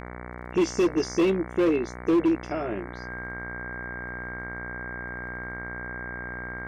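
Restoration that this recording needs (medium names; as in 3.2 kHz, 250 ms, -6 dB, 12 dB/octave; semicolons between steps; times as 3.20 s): clip repair -17 dBFS; de-click; de-hum 60.9 Hz, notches 37; band-stop 1.6 kHz, Q 30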